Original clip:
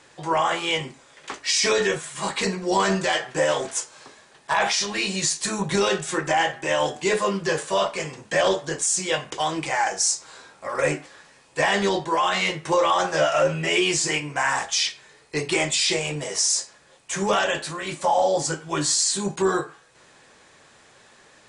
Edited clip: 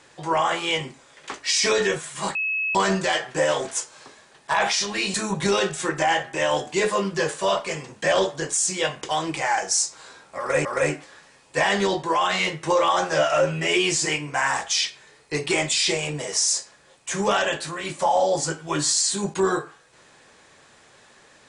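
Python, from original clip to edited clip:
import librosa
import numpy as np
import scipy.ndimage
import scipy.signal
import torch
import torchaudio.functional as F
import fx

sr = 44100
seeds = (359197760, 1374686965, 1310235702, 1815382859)

y = fx.edit(x, sr, fx.bleep(start_s=2.35, length_s=0.4, hz=2580.0, db=-22.0),
    fx.cut(start_s=5.14, length_s=0.29),
    fx.repeat(start_s=10.67, length_s=0.27, count=2), tone=tone)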